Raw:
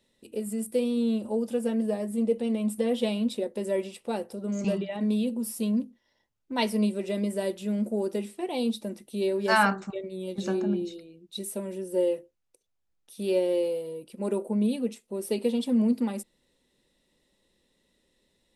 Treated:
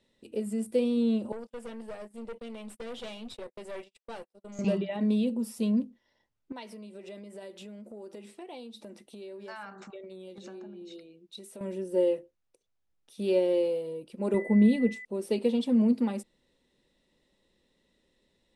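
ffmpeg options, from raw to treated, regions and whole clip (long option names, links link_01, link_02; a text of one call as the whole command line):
ffmpeg -i in.wav -filter_complex "[0:a]asettb=1/sr,asplit=3[link_01][link_02][link_03];[link_01]atrim=end=1.324[link_04];[link_02]atrim=start=1.32:end=4.59,asetpts=PTS-STARTPTS,afade=type=in:duration=0.004:curve=qsin,afade=type=out:start_time=3.266:duration=0.004:curve=qsin,highpass=frequency=930:poles=1,agate=range=-37dB:threshold=-44dB:ratio=16:release=100:detection=peak,aeval=exprs='(tanh(63.1*val(0)+0.55)-tanh(0.55))/63.1':channel_layout=same[link_05];[link_03]atrim=start=4.586[link_06];[link_04][link_05]acrossfade=duration=0.004:curve1=hsin:curve2=qsin[link_07];[link_07][link_06]acrossfade=duration=0.004:curve1=qsin:curve2=hsin,asettb=1/sr,asplit=3[link_08][link_09][link_10];[link_08]atrim=end=6.524[link_11];[link_09]atrim=start=6.52:end=11.61,asetpts=PTS-STARTPTS,afade=type=in:duration=0.004:curve=qsin,afade=type=out:start_time=5.086:duration=0.004:curve=qsin,acompressor=threshold=-37dB:ratio=12:attack=3.2:release=140:knee=1:detection=peak,lowshelf=frequency=210:gain=-11.5[link_12];[link_10]atrim=start=11.606[link_13];[link_11][link_12]acrossfade=duration=0.004:curve1=hsin:curve2=qsin[link_14];[link_14][link_13]acrossfade=duration=0.004:curve1=qsin:curve2=hsin,asettb=1/sr,asplit=3[link_15][link_16][link_17];[link_15]atrim=end=14.344[link_18];[link_16]atrim=start=14.34:end=15.05,asetpts=PTS-STARTPTS,afade=type=in:duration=0.004:curve=qsin,afade=type=out:start_time=0.706:duration=0.004:curve=qsin,lowshelf=frequency=200:gain=10.5,aeval=exprs='val(0)+0.01*sin(2*PI*2000*n/s)':channel_layout=same[link_19];[link_17]atrim=start=15.046[link_20];[link_18][link_19]acrossfade=duration=0.004:curve1=hsin:curve2=qsin[link_21];[link_21][link_20]acrossfade=duration=0.004:curve1=qsin:curve2=hsin,lowpass=10000,highshelf=frequency=6700:gain=-8.5" out.wav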